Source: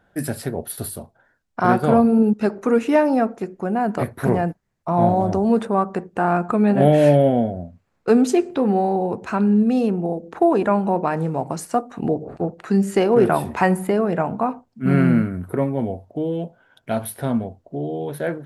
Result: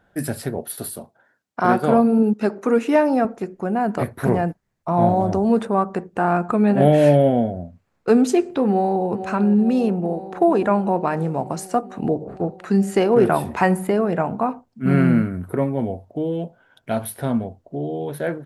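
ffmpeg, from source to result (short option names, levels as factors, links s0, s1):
-filter_complex "[0:a]asettb=1/sr,asplit=3[s0][s1][s2];[s0]atrim=end=0.584[s3];[s1]atrim=start=0.58:end=3.25,asetpts=PTS-STARTPTS,afade=t=in:d=0.004:c=qsin,afade=t=out:st=2.666:d=0.004:c=qsin,highpass=160[s4];[s2]atrim=start=3.246[s5];[s3][s4]acrossfade=d=0.004:c1=hsin:c2=qsin[s6];[s6][s5]acrossfade=d=0.004:c1=qsin:c2=hsin,asplit=2[s7][s8];[s8]afade=t=in:st=8.67:d=0.01,afade=t=out:st=9.09:d=0.01,aecho=0:1:450|900|1350|1800|2250|2700|3150|3600|4050|4500|4950|5400:0.281838|0.225471|0.180377|0.144301|0.115441|0.0923528|0.0738822|0.0591058|0.0472846|0.0378277|0.0302622|0.0242097[s9];[s7][s9]amix=inputs=2:normalize=0"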